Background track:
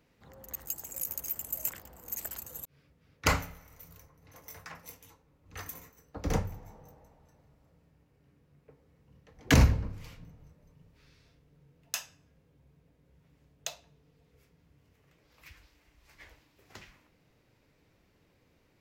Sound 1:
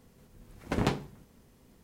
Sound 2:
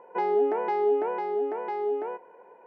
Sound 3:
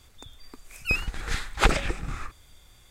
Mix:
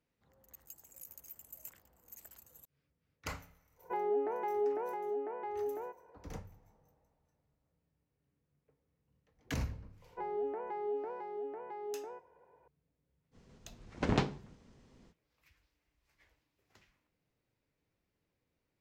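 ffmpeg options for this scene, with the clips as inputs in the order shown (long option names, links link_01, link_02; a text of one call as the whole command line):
ffmpeg -i bed.wav -i cue0.wav -i cue1.wav -filter_complex "[2:a]asplit=2[link_01][link_02];[0:a]volume=-16dB[link_03];[link_01]highpass=130,lowpass=2800[link_04];[link_02]acrossover=split=2500[link_05][link_06];[link_06]acompressor=threshold=-60dB:ratio=4:attack=1:release=60[link_07];[link_05][link_07]amix=inputs=2:normalize=0[link_08];[1:a]lowpass=frequency=6900:width=0.5412,lowpass=frequency=6900:width=1.3066[link_09];[link_04]atrim=end=2.66,asetpts=PTS-STARTPTS,volume=-9dB,afade=type=in:duration=0.1,afade=type=out:start_time=2.56:duration=0.1,adelay=3750[link_10];[link_08]atrim=end=2.66,asetpts=PTS-STARTPTS,volume=-13dB,afade=type=in:duration=0.004:curve=hsin,afade=type=out:start_time=2.656:duration=0.004:curve=hsin,adelay=441882S[link_11];[link_09]atrim=end=1.83,asetpts=PTS-STARTPTS,volume=-2dB,afade=type=in:duration=0.05,afade=type=out:start_time=1.78:duration=0.05,adelay=13310[link_12];[link_03][link_10][link_11][link_12]amix=inputs=4:normalize=0" out.wav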